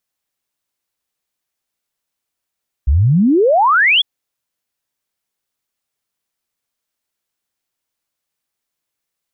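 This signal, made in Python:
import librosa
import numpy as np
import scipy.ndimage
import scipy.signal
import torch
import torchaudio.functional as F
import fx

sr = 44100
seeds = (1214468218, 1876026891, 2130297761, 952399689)

y = fx.ess(sr, length_s=1.15, from_hz=61.0, to_hz=3500.0, level_db=-8.5)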